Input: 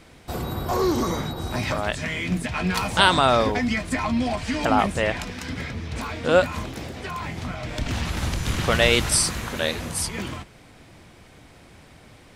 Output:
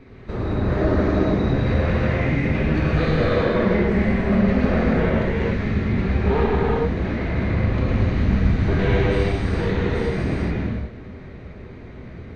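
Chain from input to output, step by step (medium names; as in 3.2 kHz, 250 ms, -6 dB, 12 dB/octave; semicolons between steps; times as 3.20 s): comb filter that takes the minimum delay 0.47 ms; compression 4:1, threshold -28 dBFS, peak gain reduction 13.5 dB; formant-preserving pitch shift -3 st; tape spacing loss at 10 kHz 42 dB; gated-style reverb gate 480 ms flat, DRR -7.5 dB; trim +6 dB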